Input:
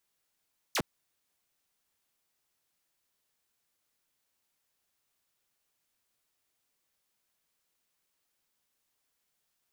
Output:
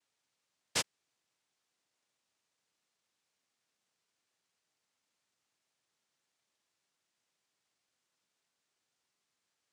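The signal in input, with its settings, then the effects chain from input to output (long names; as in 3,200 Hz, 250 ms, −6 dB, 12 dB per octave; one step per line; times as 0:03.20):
single falling chirp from 7,500 Hz, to 110 Hz, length 0.06 s saw, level −24 dB
cochlear-implant simulation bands 1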